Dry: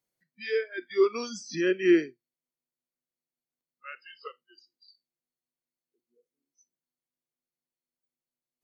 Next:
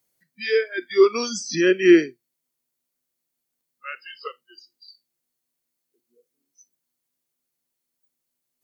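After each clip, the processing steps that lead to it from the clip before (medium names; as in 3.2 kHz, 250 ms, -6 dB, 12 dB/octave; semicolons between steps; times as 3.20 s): treble shelf 6.2 kHz +8.5 dB; trim +7.5 dB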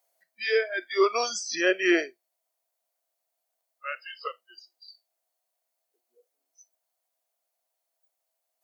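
resonant high-pass 670 Hz, resonance Q 7; trim -2 dB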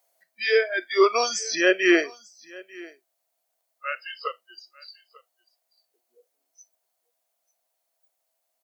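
delay 894 ms -22.5 dB; trim +4 dB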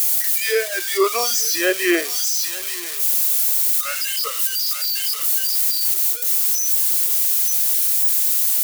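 zero-crossing glitches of -14.5 dBFS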